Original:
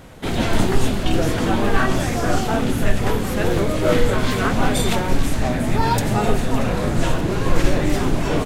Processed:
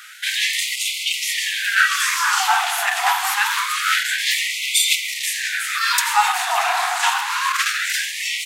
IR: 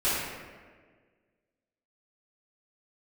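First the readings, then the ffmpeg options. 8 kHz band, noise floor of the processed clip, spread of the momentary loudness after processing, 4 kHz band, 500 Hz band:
+10.0 dB, -27 dBFS, 5 LU, +10.0 dB, -16.5 dB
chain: -filter_complex "[0:a]acontrast=54,asplit=2[a][b];[1:a]atrim=start_sample=2205,highshelf=f=7.6k:g=-4[c];[b][c]afir=irnorm=-1:irlink=0,volume=-31dB[d];[a][d]amix=inputs=2:normalize=0,afftfilt=real='re*gte(b*sr/1024,660*pow(2000/660,0.5+0.5*sin(2*PI*0.26*pts/sr)))':imag='im*gte(b*sr/1024,660*pow(2000/660,0.5+0.5*sin(2*PI*0.26*pts/sr)))':win_size=1024:overlap=0.75,volume=4.5dB"

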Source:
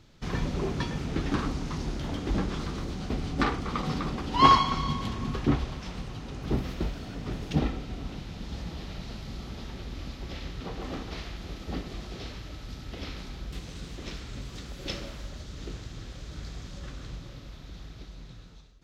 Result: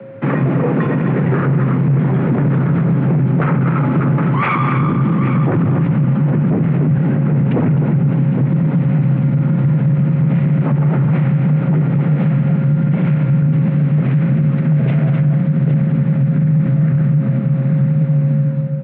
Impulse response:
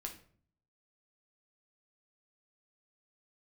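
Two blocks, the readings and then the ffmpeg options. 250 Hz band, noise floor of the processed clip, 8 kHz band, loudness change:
+19.5 dB, -18 dBFS, under -30 dB, +17.0 dB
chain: -filter_complex "[0:a]asubboost=boost=5.5:cutoff=110,aeval=exprs='0.562*sin(PI/2*4.47*val(0)/0.562)':c=same,aeval=exprs='val(0)+0.02*sin(2*PI*440*n/s)':c=same,afreqshift=350,asplit=2[a][b];[b]aecho=0:1:193|258|810:0.2|0.316|0.251[c];[a][c]amix=inputs=2:normalize=0,highpass=f=200:t=q:w=0.5412,highpass=f=200:t=q:w=1.307,lowpass=f=2.5k:t=q:w=0.5176,lowpass=f=2.5k:t=q:w=0.7071,lowpass=f=2.5k:t=q:w=1.932,afreqshift=-250,alimiter=level_in=8.5dB:limit=-1dB:release=50:level=0:latency=1,volume=-7dB"

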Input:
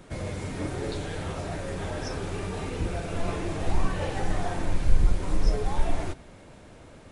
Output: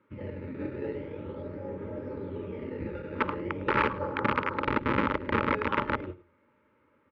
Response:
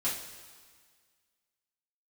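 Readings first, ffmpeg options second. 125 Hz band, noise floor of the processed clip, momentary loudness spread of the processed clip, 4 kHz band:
-7.5 dB, -68 dBFS, 12 LU, -3.5 dB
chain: -filter_complex "[0:a]afwtdn=0.0355,asplit=2[a][b];[b]acrusher=samples=14:mix=1:aa=0.000001:lfo=1:lforange=14:lforate=0.41,volume=-6dB[c];[a][c]amix=inputs=2:normalize=0,flanger=delay=9.3:depth=4.7:regen=79:speed=0.52:shape=triangular,aeval=exprs='(mod(10*val(0)+1,2)-1)/10':c=same,asuperstop=centerf=720:order=12:qfactor=3.2,highpass=130,equalizer=f=160:t=q:w=4:g=-10,equalizer=f=250:t=q:w=4:g=3,equalizer=f=780:t=q:w=4:g=9,equalizer=f=1.3k:t=q:w=4:g=8,equalizer=f=2.1k:t=q:w=4:g=5,lowpass=f=2.8k:w=0.5412,lowpass=f=2.8k:w=1.3066,aecho=1:1:106:0.1"

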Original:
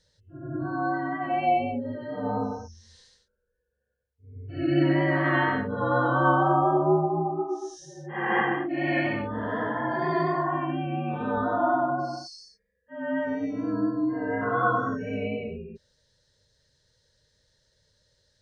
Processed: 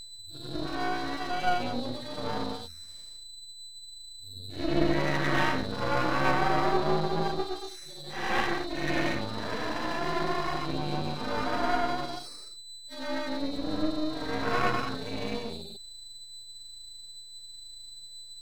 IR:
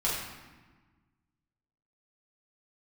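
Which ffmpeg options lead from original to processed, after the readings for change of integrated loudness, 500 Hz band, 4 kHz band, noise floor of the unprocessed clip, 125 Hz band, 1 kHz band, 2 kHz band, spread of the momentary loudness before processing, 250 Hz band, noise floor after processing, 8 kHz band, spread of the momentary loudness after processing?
-4.0 dB, -4.5 dB, +9.5 dB, -77 dBFS, -5.0 dB, -4.5 dB, -3.0 dB, 14 LU, -5.0 dB, -46 dBFS, n/a, 17 LU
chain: -af "aeval=exprs='val(0)+0.0112*sin(2*PI*4000*n/s)':c=same,aphaser=in_gain=1:out_gain=1:delay=4.1:decay=0.24:speed=0.55:type=sinusoidal,aeval=exprs='max(val(0),0)':c=same"

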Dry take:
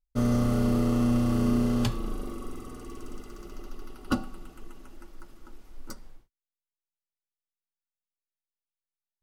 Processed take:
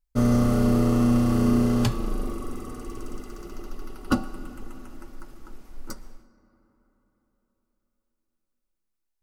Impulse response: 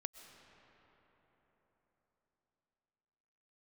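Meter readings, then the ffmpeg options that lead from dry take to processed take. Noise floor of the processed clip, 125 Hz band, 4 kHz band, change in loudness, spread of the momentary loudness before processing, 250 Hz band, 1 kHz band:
-79 dBFS, +4.0 dB, +2.5 dB, +4.0 dB, 21 LU, +4.0 dB, +4.5 dB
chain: -filter_complex "[0:a]asplit=2[a][b];[b]equalizer=f=3.3k:t=o:w=0.34:g=-14.5[c];[1:a]atrim=start_sample=2205[d];[c][d]afir=irnorm=-1:irlink=0,volume=0dB[e];[a][e]amix=inputs=2:normalize=0"

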